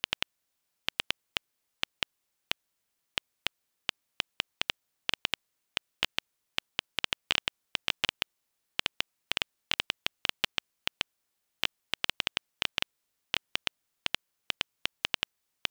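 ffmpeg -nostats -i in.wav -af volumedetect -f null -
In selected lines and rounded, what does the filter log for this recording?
mean_volume: -37.4 dB
max_volume: -6.7 dB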